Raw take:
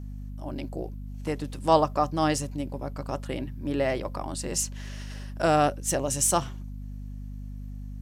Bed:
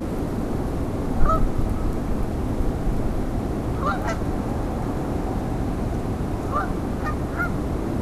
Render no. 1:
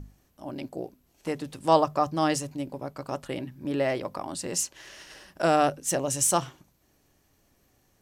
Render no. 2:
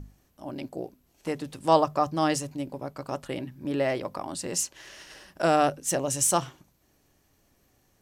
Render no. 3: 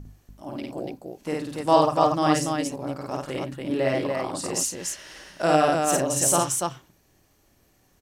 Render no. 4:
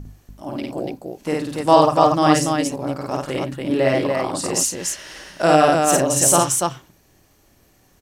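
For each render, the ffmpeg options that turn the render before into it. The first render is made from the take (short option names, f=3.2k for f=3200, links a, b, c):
-af "bandreject=f=50:t=h:w=6,bandreject=f=100:t=h:w=6,bandreject=f=150:t=h:w=6,bandreject=f=200:t=h:w=6,bandreject=f=250:t=h:w=6"
-af anull
-af "aecho=1:1:52.48|90.38|288.6:0.891|0.282|0.708"
-af "volume=6dB,alimiter=limit=-1dB:level=0:latency=1"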